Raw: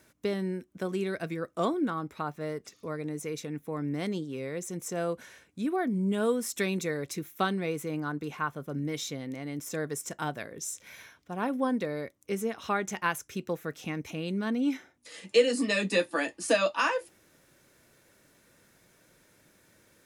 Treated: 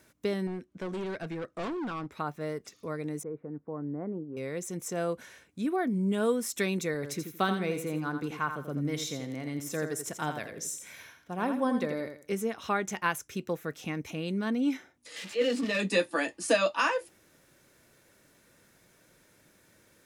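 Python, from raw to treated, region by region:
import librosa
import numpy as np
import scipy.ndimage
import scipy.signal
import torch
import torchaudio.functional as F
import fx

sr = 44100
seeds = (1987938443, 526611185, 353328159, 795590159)

y = fx.chain(x, sr, fx.clip_hard(threshold_db=-32.0),
    fx.air_absorb(metres=60.0), at=(0.47, 2.12))
y = fx.chain(y, sr, fx.bessel_lowpass(hz=840.0, order=6),
    fx.low_shelf(hz=250.0, db=-6.0), at=(3.23, 4.37))
y = fx.chain(y, sr, fx.highpass(hz=53.0, slope=12),
    fx.echo_feedback(ms=84, feedback_pct=26, wet_db=-8), at=(6.94, 12.33))
y = fx.chain(y, sr, fx.crossing_spikes(level_db=-23.5),
    fx.lowpass(hz=3700.0, slope=12),
    fx.transient(attack_db=-12, sustain_db=0), at=(15.16, 15.8))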